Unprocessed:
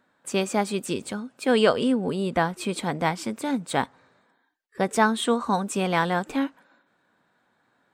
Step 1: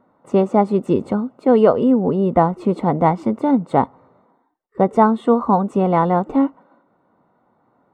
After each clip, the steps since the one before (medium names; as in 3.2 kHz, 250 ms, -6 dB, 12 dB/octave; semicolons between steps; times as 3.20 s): in parallel at +2 dB: gain riding 0.5 s; on the sum: Savitzky-Golay filter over 65 samples; trim +2 dB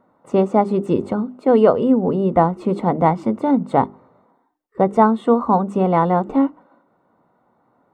hum notches 50/100/150/200/250/300/350/400 Hz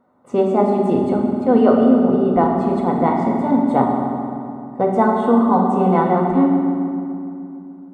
reverberation RT60 2.7 s, pre-delay 4 ms, DRR -1 dB; trim -3.5 dB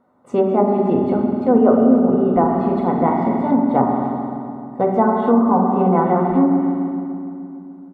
low-pass that closes with the level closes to 1.3 kHz, closed at -10 dBFS; speakerphone echo 270 ms, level -27 dB